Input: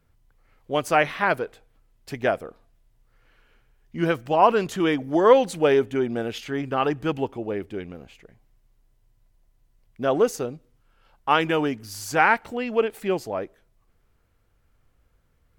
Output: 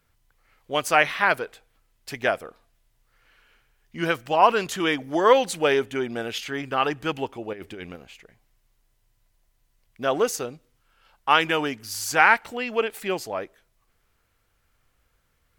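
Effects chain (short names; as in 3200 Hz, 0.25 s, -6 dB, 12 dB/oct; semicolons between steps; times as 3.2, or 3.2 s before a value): tilt shelf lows -5.5 dB, about 820 Hz; 7.53–7.96 negative-ratio compressor -37 dBFS, ratio -1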